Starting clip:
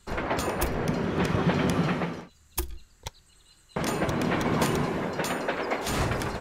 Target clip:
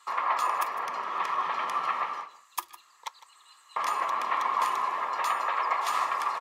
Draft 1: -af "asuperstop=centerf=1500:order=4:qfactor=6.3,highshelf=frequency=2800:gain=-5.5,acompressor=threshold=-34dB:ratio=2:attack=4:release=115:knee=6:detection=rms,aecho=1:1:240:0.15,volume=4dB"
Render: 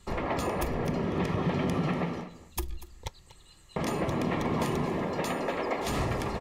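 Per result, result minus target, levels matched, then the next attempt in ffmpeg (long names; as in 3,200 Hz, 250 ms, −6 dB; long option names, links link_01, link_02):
echo 84 ms late; 1,000 Hz band −7.0 dB
-af "asuperstop=centerf=1500:order=4:qfactor=6.3,highshelf=frequency=2800:gain=-5.5,acompressor=threshold=-34dB:ratio=2:attack=4:release=115:knee=6:detection=rms,aecho=1:1:156:0.15,volume=4dB"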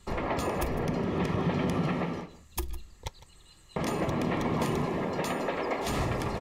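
1,000 Hz band −7.0 dB
-af "asuperstop=centerf=1500:order=4:qfactor=6.3,highshelf=frequency=2800:gain=-5.5,acompressor=threshold=-34dB:ratio=2:attack=4:release=115:knee=6:detection=rms,highpass=frequency=1100:width_type=q:width=4.8,aecho=1:1:156:0.15,volume=4dB"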